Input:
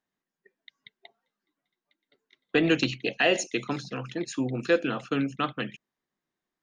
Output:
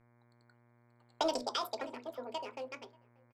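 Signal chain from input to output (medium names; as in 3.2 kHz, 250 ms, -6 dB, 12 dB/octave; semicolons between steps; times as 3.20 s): local Wiener filter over 15 samples; Doppler pass-by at 2.43 s, 21 m/s, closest 5.7 m; treble shelf 3.3 kHz -10 dB; hum notches 60/120/180/240/300/360/420/480 Hz; echo from a far wall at 200 m, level -28 dB; compression 3:1, threshold -38 dBFS, peak gain reduction 13.5 dB; mains buzz 60 Hz, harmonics 20, -73 dBFS -5 dB/octave; on a send at -12.5 dB: reverberation RT60 0.40 s, pre-delay 5 ms; on the sum: wide varispeed 1.99×; trim +5 dB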